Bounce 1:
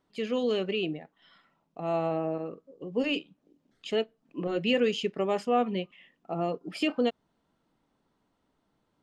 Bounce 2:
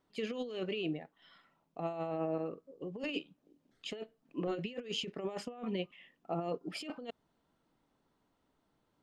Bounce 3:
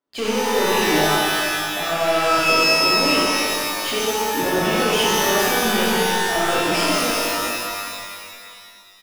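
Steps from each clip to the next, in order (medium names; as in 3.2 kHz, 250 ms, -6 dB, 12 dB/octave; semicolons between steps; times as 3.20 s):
peaking EQ 200 Hz -2.5 dB 0.43 oct; compressor with a negative ratio -31 dBFS, ratio -0.5; trim -5.5 dB
bands offset in time highs, lows 70 ms, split 170 Hz; waveshaping leveller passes 5; pitch-shifted reverb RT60 2.2 s, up +12 st, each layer -2 dB, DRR -6.5 dB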